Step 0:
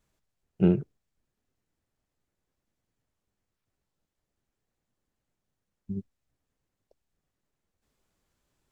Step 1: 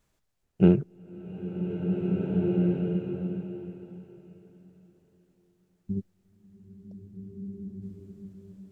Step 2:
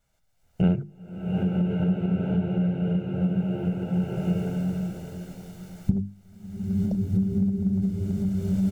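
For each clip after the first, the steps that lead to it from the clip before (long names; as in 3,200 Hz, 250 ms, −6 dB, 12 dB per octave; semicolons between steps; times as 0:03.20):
slow-attack reverb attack 2,020 ms, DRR 0.5 dB; level +3 dB
camcorder AGC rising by 27 dB per second; mains-hum notches 50/100/150/200/250/300/350 Hz; comb filter 1.4 ms, depth 57%; level −3 dB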